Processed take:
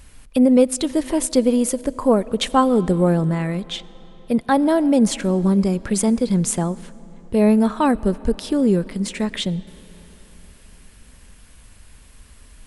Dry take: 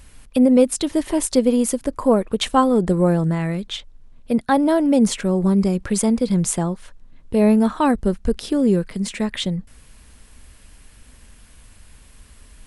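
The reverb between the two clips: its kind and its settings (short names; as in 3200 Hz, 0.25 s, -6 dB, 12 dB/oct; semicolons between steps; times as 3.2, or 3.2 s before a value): digital reverb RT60 4.3 s, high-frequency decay 0.7×, pre-delay 45 ms, DRR 20 dB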